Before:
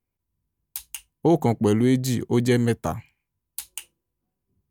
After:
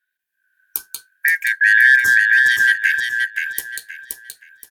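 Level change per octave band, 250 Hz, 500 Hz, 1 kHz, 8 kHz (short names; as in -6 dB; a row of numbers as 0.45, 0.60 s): under -30 dB, under -25 dB, under -15 dB, +5.5 dB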